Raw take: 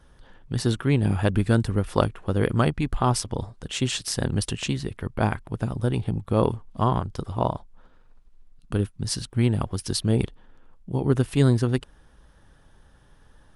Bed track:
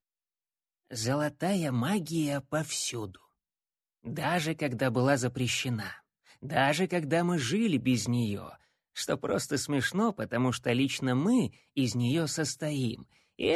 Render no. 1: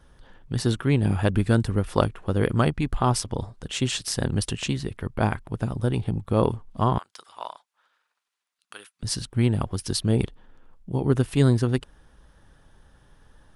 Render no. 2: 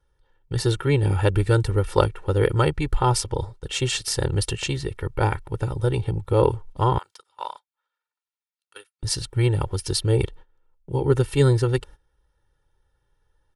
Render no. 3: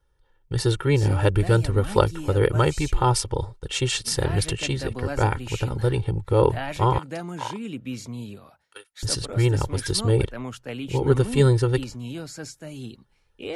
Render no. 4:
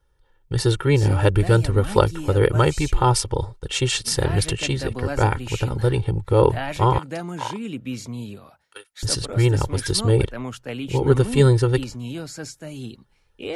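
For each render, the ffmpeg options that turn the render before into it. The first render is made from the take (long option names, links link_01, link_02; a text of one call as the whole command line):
ffmpeg -i in.wav -filter_complex "[0:a]asettb=1/sr,asplit=3[link_01][link_02][link_03];[link_01]atrim=end=6.984[link_04];[link_02]atrim=start=6.98:end=9.03,asetpts=PTS-STARTPTS,afade=type=in:duration=0.004:curve=qsin,afade=type=out:start_time=2.046:duration=0.004:curve=qsin,highpass=1400[link_05];[link_03]atrim=start=9.026[link_06];[link_04][link_05]acrossfade=duration=0.004:curve1=hsin:curve2=qsin[link_07];[link_07][link_06]acrossfade=duration=0.004:curve1=qsin:curve2=hsin" out.wav
ffmpeg -i in.wav -af "agate=range=-18dB:threshold=-42dB:ratio=16:detection=peak,aecho=1:1:2.2:0.91" out.wav
ffmpeg -i in.wav -i bed.wav -filter_complex "[1:a]volume=-6dB[link_01];[0:a][link_01]amix=inputs=2:normalize=0" out.wav
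ffmpeg -i in.wav -af "volume=2.5dB,alimiter=limit=-1dB:level=0:latency=1" out.wav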